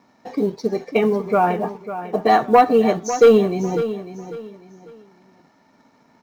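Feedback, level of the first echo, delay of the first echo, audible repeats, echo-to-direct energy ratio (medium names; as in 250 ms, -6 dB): 30%, -12.0 dB, 548 ms, 3, -11.5 dB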